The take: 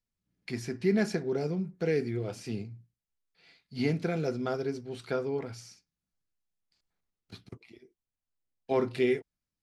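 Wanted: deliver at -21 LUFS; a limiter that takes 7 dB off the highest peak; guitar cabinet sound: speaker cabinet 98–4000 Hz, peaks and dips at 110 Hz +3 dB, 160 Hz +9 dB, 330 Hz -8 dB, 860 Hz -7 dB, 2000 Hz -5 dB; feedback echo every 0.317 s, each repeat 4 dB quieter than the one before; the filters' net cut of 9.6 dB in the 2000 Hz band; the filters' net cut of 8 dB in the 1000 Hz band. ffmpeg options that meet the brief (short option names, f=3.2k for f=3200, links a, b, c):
-af "equalizer=f=1k:t=o:g=-6,equalizer=f=2k:t=o:g=-7,alimiter=limit=-24dB:level=0:latency=1,highpass=98,equalizer=f=110:t=q:w=4:g=3,equalizer=f=160:t=q:w=4:g=9,equalizer=f=330:t=q:w=4:g=-8,equalizer=f=860:t=q:w=4:g=-7,equalizer=f=2k:t=q:w=4:g=-5,lowpass=f=4k:w=0.5412,lowpass=f=4k:w=1.3066,aecho=1:1:317|634|951|1268|1585|1902|2219|2536|2853:0.631|0.398|0.25|0.158|0.0994|0.0626|0.0394|0.0249|0.0157,volume=11.5dB"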